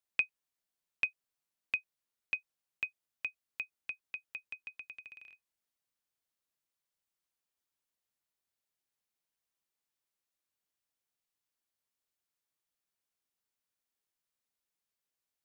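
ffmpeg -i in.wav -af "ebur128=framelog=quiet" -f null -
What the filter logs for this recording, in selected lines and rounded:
Integrated loudness:
  I:         -39.6 LUFS
  Threshold: -50.0 LUFS
Loudness range:
  LRA:        16.3 LU
  Threshold: -63.1 LUFS
  LRA low:   -56.0 LUFS
  LRA high:  -39.7 LUFS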